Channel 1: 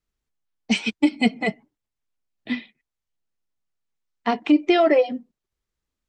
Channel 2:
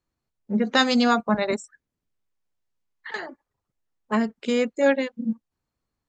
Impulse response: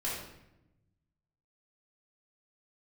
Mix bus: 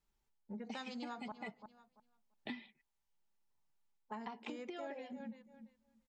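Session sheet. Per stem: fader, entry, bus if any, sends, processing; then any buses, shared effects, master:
-2.5 dB, 0.00 s, no send, no echo send, comb 5.1 ms, depth 39%; compression, threshold -24 dBFS, peak gain reduction 12 dB; auto duck -8 dB, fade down 0.25 s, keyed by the second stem
-16.5 dB, 0.00 s, muted 1.32–3.50 s, send -22 dB, echo send -15 dB, none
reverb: on, RT60 0.90 s, pre-delay 3 ms
echo: feedback delay 340 ms, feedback 15%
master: peaking EQ 880 Hz +13 dB 0.21 oct; compression 6:1, threshold -43 dBFS, peak gain reduction 16 dB

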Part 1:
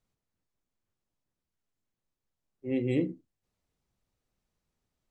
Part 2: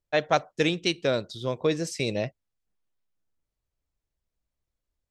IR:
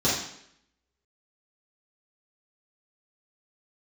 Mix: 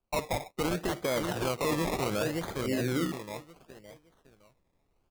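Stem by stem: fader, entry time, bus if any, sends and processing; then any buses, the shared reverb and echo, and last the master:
-5.5 dB, 0.00 s, no send, no echo send, none
+2.5 dB, 0.00 s, no send, echo send -13.5 dB, bass shelf 240 Hz -5 dB; auto duck -10 dB, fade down 1.90 s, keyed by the first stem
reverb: none
echo: feedback delay 563 ms, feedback 31%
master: level rider gain up to 10 dB; decimation with a swept rate 23×, swing 60% 0.69 Hz; peak limiter -22.5 dBFS, peak gain reduction 16 dB

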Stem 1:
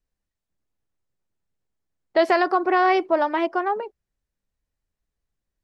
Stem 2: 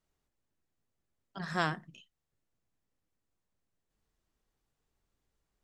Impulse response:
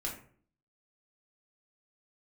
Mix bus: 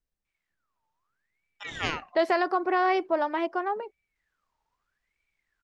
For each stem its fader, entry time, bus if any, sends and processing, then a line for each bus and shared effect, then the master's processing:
-5.5 dB, 0.00 s, no send, none
0.0 dB, 0.25 s, no send, steep low-pass 6.6 kHz; level rider gain up to 3.5 dB; ring modulator with a swept carrier 1.6 kHz, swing 45%, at 0.8 Hz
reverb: none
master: none

